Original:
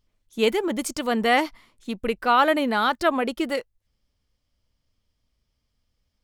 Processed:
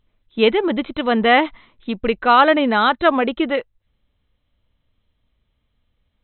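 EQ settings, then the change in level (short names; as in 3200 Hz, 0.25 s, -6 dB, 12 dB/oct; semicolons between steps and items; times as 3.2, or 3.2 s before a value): brick-wall FIR low-pass 4100 Hz; +6.0 dB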